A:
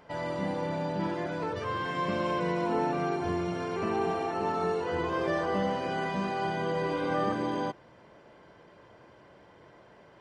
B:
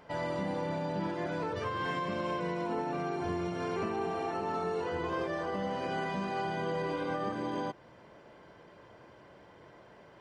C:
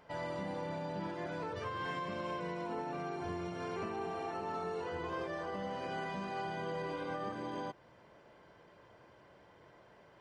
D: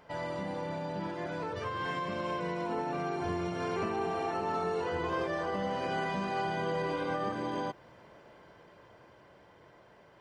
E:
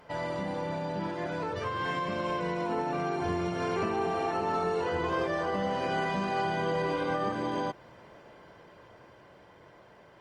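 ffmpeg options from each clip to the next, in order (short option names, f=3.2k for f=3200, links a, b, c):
-af "alimiter=level_in=1dB:limit=-24dB:level=0:latency=1:release=185,volume=-1dB"
-af "equalizer=f=260:t=o:w=1.5:g=-2.5,volume=-4.5dB"
-af "dynaudnorm=f=540:g=9:m=3.5dB,volume=3dB"
-af "volume=3dB" -ar 48000 -c:a libopus -b:a 48k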